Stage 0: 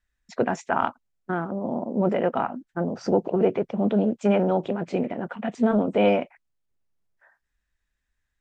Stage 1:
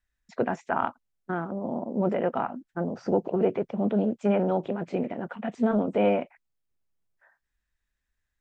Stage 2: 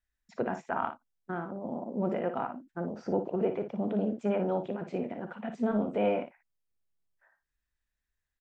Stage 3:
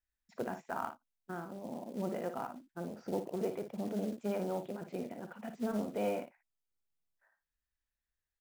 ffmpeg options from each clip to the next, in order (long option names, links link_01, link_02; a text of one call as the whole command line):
ffmpeg -i in.wav -filter_complex "[0:a]acrossover=split=2700[link_01][link_02];[link_02]acompressor=threshold=-50dB:ratio=4:attack=1:release=60[link_03];[link_01][link_03]amix=inputs=2:normalize=0,volume=-3dB" out.wav
ffmpeg -i in.wav -af "aecho=1:1:43|57:0.178|0.335,volume=-5.5dB" out.wav
ffmpeg -i in.wav -af "acrusher=bits=5:mode=log:mix=0:aa=0.000001,volume=-6.5dB" out.wav